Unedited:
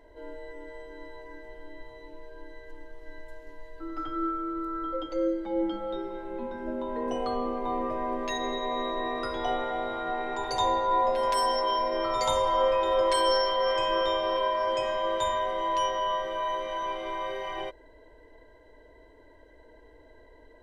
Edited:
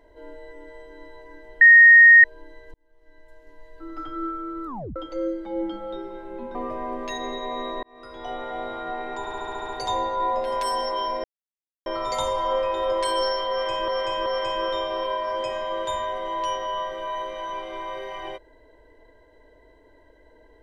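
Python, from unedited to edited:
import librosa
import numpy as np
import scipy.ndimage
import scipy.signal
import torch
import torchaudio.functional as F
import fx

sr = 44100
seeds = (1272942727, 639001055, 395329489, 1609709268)

y = fx.edit(x, sr, fx.bleep(start_s=1.61, length_s=0.63, hz=1860.0, db=-7.0),
    fx.fade_in_span(start_s=2.74, length_s=1.16),
    fx.tape_stop(start_s=4.66, length_s=0.3),
    fx.cut(start_s=6.55, length_s=1.2),
    fx.fade_in_span(start_s=9.03, length_s=0.78),
    fx.stutter(start_s=10.4, slice_s=0.07, count=8),
    fx.insert_silence(at_s=11.95, length_s=0.62),
    fx.repeat(start_s=13.59, length_s=0.38, count=3), tone=tone)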